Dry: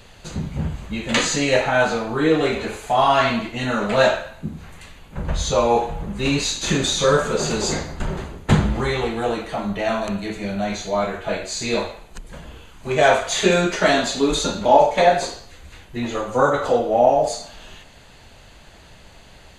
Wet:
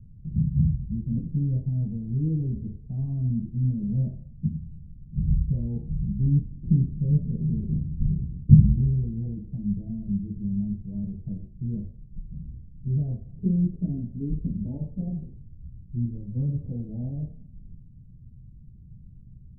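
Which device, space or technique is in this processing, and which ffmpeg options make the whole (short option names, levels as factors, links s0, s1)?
the neighbour's flat through the wall: -af "lowpass=f=200:w=0.5412,lowpass=f=200:w=1.3066,equalizer=f=130:t=o:w=0.83:g=7.5"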